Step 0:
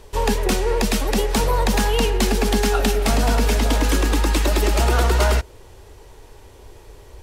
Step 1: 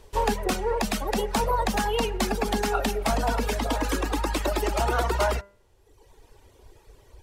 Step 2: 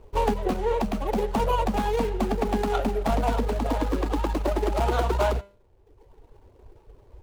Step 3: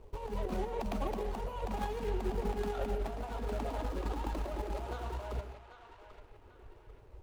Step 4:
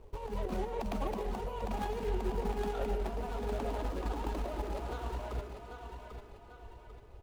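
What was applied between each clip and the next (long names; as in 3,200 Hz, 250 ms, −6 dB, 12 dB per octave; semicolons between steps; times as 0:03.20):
reverb reduction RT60 1.2 s; hum removal 199.9 Hz, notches 14; dynamic equaliser 850 Hz, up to +7 dB, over −37 dBFS, Q 0.71; level −6.5 dB
running median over 25 samples; level +2 dB
compressor whose output falls as the input rises −27 dBFS, ratio −0.5; feedback echo with a band-pass in the loop 791 ms, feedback 43%, band-pass 1,900 Hz, level −8.5 dB; convolution reverb RT60 0.35 s, pre-delay 112 ms, DRR 9 dB; level −8 dB
repeating echo 795 ms, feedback 37%, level −9 dB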